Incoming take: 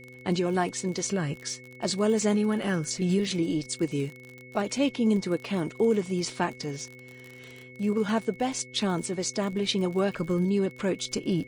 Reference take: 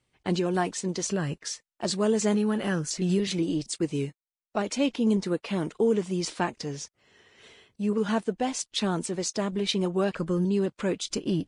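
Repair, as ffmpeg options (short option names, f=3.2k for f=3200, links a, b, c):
-af "adeclick=t=4,bandreject=f=126.2:t=h:w=4,bandreject=f=252.4:t=h:w=4,bandreject=f=378.6:t=h:w=4,bandreject=f=504.8:t=h:w=4,bandreject=f=2.2k:w=30"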